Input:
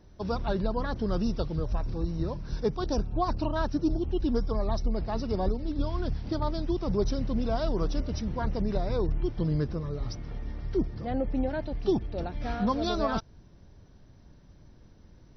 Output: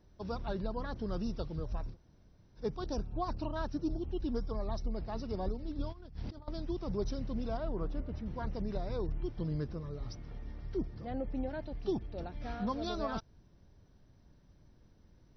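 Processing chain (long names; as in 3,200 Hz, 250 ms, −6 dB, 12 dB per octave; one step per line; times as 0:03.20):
0:01.92–0:02.60: fill with room tone, crossfade 0.10 s
0:05.90–0:06.48: compressor whose output falls as the input rises −35 dBFS, ratio −0.5
0:07.57–0:08.26: low-pass filter 2,200 Hz 12 dB per octave
level −8 dB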